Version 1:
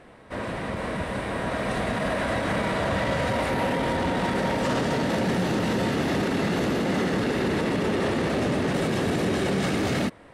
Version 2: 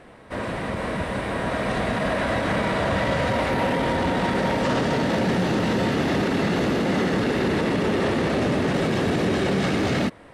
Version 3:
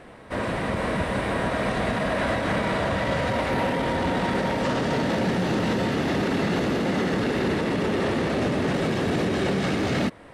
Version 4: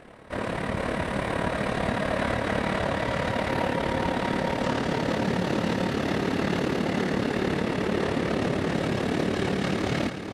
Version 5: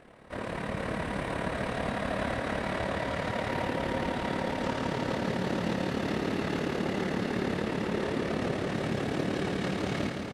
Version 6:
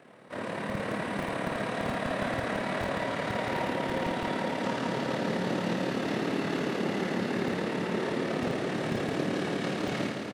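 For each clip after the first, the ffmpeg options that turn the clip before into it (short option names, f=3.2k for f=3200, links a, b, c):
-filter_complex "[0:a]acrossover=split=6400[a][b];[b]acompressor=threshold=-52dB:ratio=4:attack=1:release=60[c];[a][c]amix=inputs=2:normalize=0,volume=2.5dB"
-af "alimiter=limit=-16.5dB:level=0:latency=1:release=399,volume=1.5dB"
-af "aecho=1:1:447:0.422,tremolo=f=36:d=0.621"
-af "aecho=1:1:163|326|489|652|815|978|1141:0.501|0.271|0.146|0.0789|0.0426|0.023|0.0124,volume=-6dB"
-filter_complex "[0:a]acrossover=split=110|730|3000[a][b][c][d];[a]acrusher=bits=5:mix=0:aa=0.000001[e];[e][b][c][d]amix=inputs=4:normalize=0,asplit=2[f][g];[g]adelay=45,volume=-6.5dB[h];[f][h]amix=inputs=2:normalize=0"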